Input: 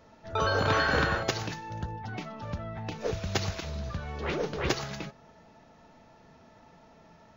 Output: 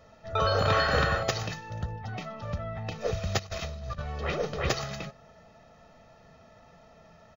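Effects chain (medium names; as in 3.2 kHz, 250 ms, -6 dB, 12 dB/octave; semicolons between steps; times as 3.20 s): 3.39–4.02 s: compressor with a negative ratio -38 dBFS, ratio -0.5; comb 1.6 ms, depth 53%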